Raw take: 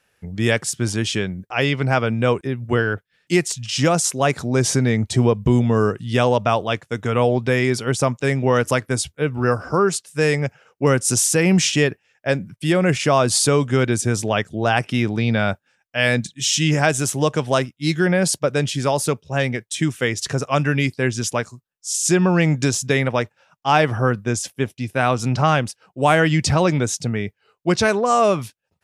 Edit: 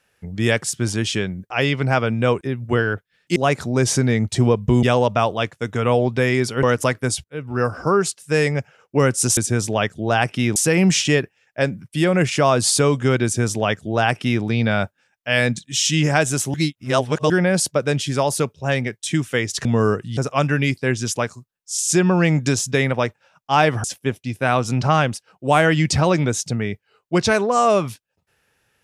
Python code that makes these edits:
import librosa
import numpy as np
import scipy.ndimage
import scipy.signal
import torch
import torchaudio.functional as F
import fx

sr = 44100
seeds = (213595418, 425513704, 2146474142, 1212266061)

y = fx.edit(x, sr, fx.cut(start_s=3.36, length_s=0.78),
    fx.move(start_s=5.61, length_s=0.52, to_s=20.33),
    fx.cut(start_s=7.93, length_s=0.57),
    fx.fade_in_from(start_s=9.11, length_s=0.48, floor_db=-18.5),
    fx.duplicate(start_s=13.92, length_s=1.19, to_s=11.24),
    fx.reverse_span(start_s=17.22, length_s=0.76),
    fx.cut(start_s=24.0, length_s=0.38), tone=tone)